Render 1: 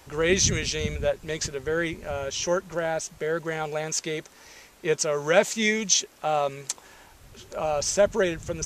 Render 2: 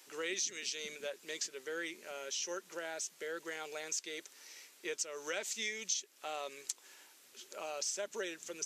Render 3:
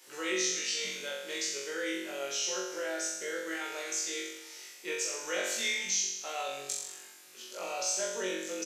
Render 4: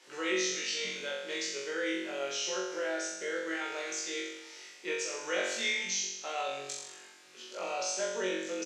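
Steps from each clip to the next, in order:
HPF 330 Hz 24 dB/oct; bell 710 Hz -14 dB 2.5 oct; compressor 3:1, threshold -35 dBFS, peak gain reduction 13 dB; gain -2 dB
doubler 16 ms -5 dB; flutter echo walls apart 3.7 m, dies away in 0.93 s
air absorption 88 m; gain +2 dB

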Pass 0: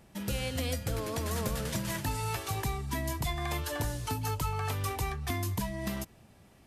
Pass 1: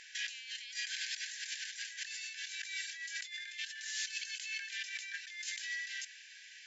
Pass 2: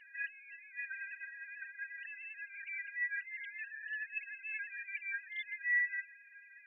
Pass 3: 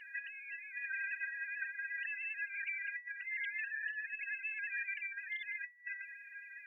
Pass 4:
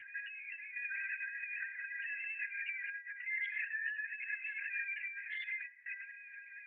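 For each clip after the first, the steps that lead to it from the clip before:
FFT band-pass 1500–7600 Hz; negative-ratio compressor -52 dBFS, ratio -1; gain +8.5 dB
sine-wave speech; gain +1 dB
negative-ratio compressor -43 dBFS, ratio -0.5; gain +3 dB
reverb, pre-delay 3 ms, DRR 7.5 dB; LPC vocoder at 8 kHz whisper

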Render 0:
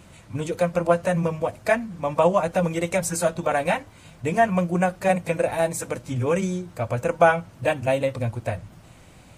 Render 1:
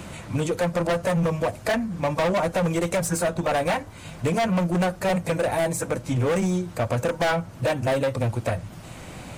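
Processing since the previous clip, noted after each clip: dynamic EQ 2800 Hz, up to -4 dB, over -41 dBFS, Q 1.2; overloaded stage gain 23 dB; three-band squash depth 40%; gain +3.5 dB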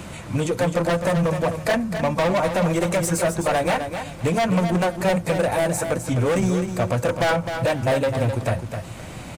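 feedback echo 0.258 s, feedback 24%, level -8 dB; gain +2 dB

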